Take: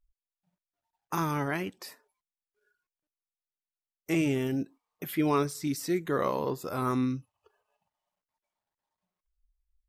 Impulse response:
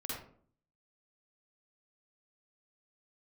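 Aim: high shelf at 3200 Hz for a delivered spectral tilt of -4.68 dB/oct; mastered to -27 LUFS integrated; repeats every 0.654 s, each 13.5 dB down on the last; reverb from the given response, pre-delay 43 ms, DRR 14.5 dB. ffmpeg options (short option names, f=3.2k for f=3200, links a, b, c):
-filter_complex "[0:a]highshelf=f=3.2k:g=8,aecho=1:1:654|1308:0.211|0.0444,asplit=2[a][b];[1:a]atrim=start_sample=2205,adelay=43[c];[b][c]afir=irnorm=-1:irlink=0,volume=-15.5dB[d];[a][d]amix=inputs=2:normalize=0,volume=3dB"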